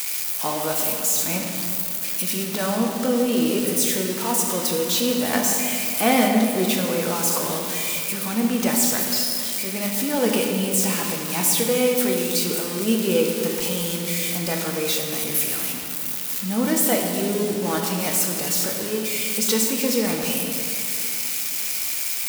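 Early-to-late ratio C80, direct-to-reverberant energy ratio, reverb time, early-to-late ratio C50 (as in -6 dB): 3.5 dB, 0.5 dB, 2.6 s, 2.5 dB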